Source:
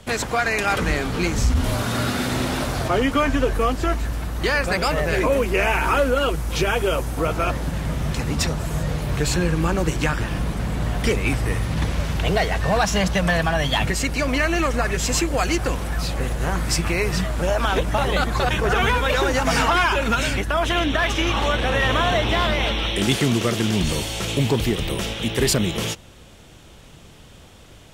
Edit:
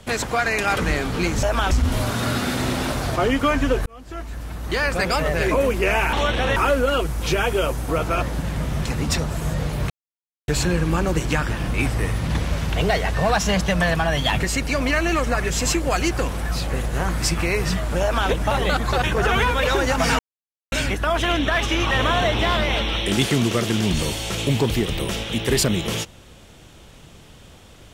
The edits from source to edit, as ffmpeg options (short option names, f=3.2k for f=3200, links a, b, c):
-filter_complex "[0:a]asplit=11[a][b][c][d][e][f][g][h][i][j][k];[a]atrim=end=1.432[l];[b]atrim=start=17.488:end=17.772[m];[c]atrim=start=1.428:end=3.58,asetpts=PTS-STARTPTS,afade=t=out:st=2.148:d=0.004:c=hsin[n];[d]atrim=start=3.58:end=5.852,asetpts=PTS-STARTPTS,afade=t=in:d=1.1[o];[e]atrim=start=21.378:end=21.812[p];[f]atrim=start=5.848:end=9.19,asetpts=PTS-STARTPTS,afade=t=out:st=3.338:d=0.004:c=hsin,apad=pad_dur=0.58[q];[g]atrim=start=9.19:end=10.452,asetpts=PTS-STARTPTS,afade=t=in:d=0.004:c=hsin[r];[h]atrim=start=11.208:end=19.66,asetpts=PTS-STARTPTS,afade=t=out:st=8.448:d=0.004:c=hsin[s];[i]atrim=start=19.66:end=20.19,asetpts=PTS-STARTPTS,volume=0[t];[j]atrim=start=20.19:end=21.382,asetpts=PTS-STARTPTS,afade=t=in:d=0.004:c=hsin[u];[k]atrim=start=21.808[v];[l][m]acrossfade=d=0.004:c1=hsin:c2=hsin[w];[n][o]concat=n=2:v=0:a=1[x];[w][x]acrossfade=d=0.004:c1=hsin:c2=hsin[y];[y][p]acrossfade=d=0.004:c1=hsin:c2=hsin[z];[q][r]concat=n=2:v=0:a=1[aa];[z][aa]acrossfade=d=0.004:c1=hsin:c2=hsin[ab];[s][t][u]concat=n=3:v=0:a=1[ac];[ab][ac]acrossfade=d=0.004:c1=hsin:c2=hsin[ad];[ad][v]acrossfade=d=0.004:c1=hsin:c2=hsin"